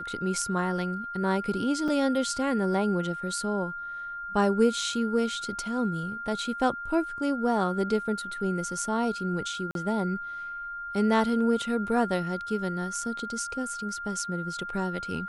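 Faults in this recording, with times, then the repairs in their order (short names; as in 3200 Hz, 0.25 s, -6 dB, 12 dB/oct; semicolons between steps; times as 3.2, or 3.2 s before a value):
tone 1400 Hz -34 dBFS
1.88 gap 4.1 ms
9.71–9.75 gap 42 ms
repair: notch 1400 Hz, Q 30; interpolate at 1.88, 4.1 ms; interpolate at 9.71, 42 ms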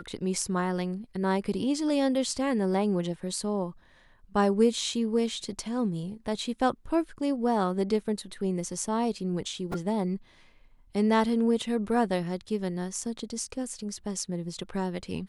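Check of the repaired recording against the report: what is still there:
none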